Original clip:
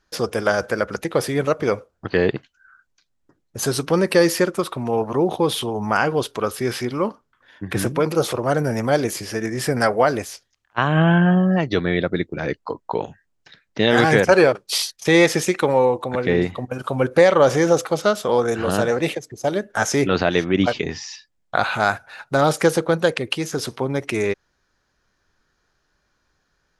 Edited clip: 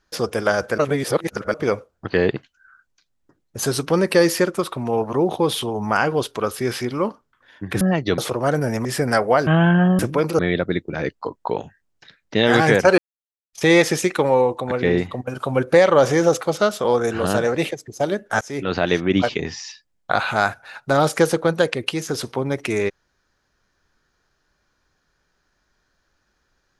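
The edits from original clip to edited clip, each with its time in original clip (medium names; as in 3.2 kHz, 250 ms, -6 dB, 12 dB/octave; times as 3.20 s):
0.78–1.54 s: reverse
7.81–8.21 s: swap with 11.46–11.83 s
8.88–9.54 s: delete
10.16–10.94 s: delete
14.42–14.97 s: mute
19.85–20.33 s: fade in, from -22.5 dB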